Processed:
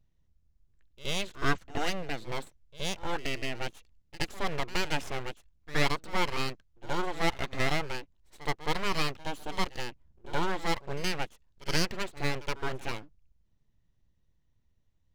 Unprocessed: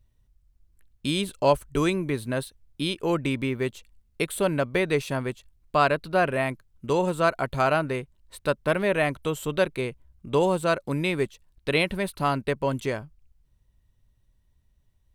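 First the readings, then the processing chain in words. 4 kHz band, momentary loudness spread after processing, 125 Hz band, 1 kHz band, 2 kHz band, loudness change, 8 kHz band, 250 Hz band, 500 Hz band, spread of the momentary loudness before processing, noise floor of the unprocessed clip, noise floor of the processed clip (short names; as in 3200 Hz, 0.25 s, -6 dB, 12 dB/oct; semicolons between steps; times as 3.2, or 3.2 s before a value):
-0.5 dB, 10 LU, -7.5 dB, -6.5 dB, -4.5 dB, -7.5 dB, -1.5 dB, -9.5 dB, -12.0 dB, 9 LU, -67 dBFS, -70 dBFS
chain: dynamic EQ 2200 Hz, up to +6 dB, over -39 dBFS, Q 0.91; downsampling 16000 Hz; full-wave rectifier; pre-echo 71 ms -17 dB; gain -5.5 dB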